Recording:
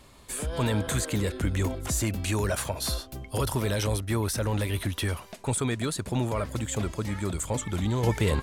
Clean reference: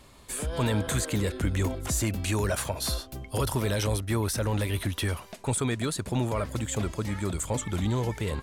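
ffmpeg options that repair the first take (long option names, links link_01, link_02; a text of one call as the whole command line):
ffmpeg -i in.wav -af "asetnsamples=nb_out_samples=441:pad=0,asendcmd='8.03 volume volume -6dB',volume=0dB" out.wav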